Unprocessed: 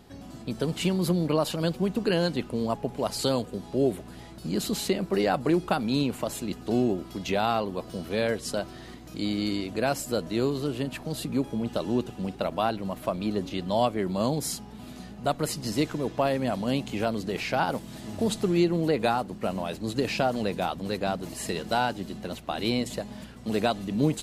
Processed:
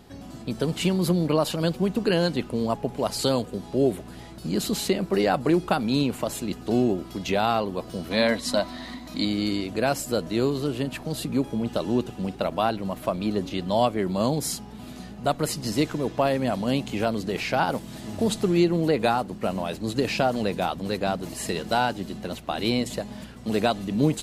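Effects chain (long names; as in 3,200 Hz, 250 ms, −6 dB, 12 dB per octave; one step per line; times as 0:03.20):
0:08.11–0:09.25: thirty-one-band graphic EQ 125 Hz −10 dB, 250 Hz +10 dB, 400 Hz −12 dB, 630 Hz +6 dB, 1,000 Hz +9 dB, 2,000 Hz +8 dB, 4,000 Hz +10 dB
level +2.5 dB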